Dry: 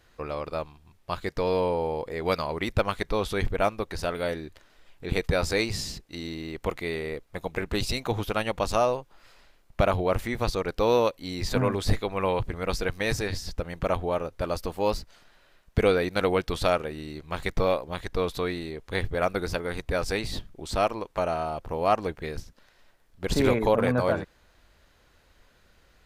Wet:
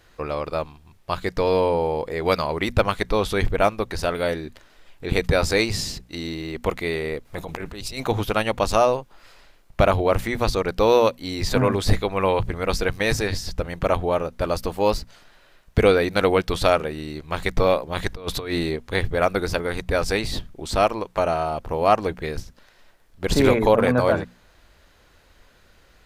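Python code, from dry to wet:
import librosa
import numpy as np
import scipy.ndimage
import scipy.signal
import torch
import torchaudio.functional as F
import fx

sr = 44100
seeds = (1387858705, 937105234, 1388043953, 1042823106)

y = fx.over_compress(x, sr, threshold_db=-37.0, ratio=-1.0, at=(7.25, 8.05))
y = fx.over_compress(y, sr, threshold_db=-32.0, ratio=-0.5, at=(17.95, 18.75), fade=0.02)
y = fx.hum_notches(y, sr, base_hz=60, count=4)
y = y * librosa.db_to_amplitude(5.5)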